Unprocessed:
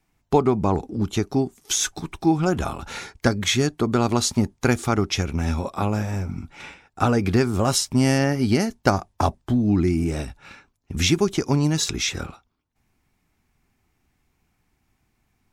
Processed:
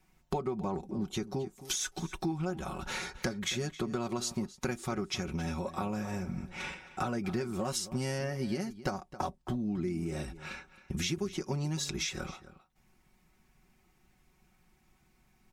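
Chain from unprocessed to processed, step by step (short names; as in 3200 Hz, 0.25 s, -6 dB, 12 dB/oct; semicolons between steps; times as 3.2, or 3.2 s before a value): comb 5.4 ms, depth 66%; compressor 4:1, threshold -34 dBFS, peak gain reduction 19 dB; outdoor echo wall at 46 m, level -15 dB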